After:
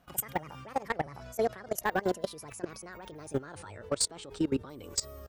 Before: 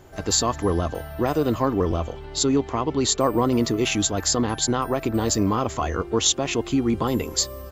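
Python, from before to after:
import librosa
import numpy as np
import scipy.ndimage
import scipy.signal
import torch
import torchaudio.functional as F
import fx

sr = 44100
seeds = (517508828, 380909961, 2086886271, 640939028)

y = fx.speed_glide(x, sr, from_pct=188, to_pct=104)
y = fx.level_steps(y, sr, step_db=20)
y = np.clip(10.0 ** (14.0 / 20.0) * y, -1.0, 1.0) / 10.0 ** (14.0 / 20.0)
y = y * 10.0 ** (-5.5 / 20.0)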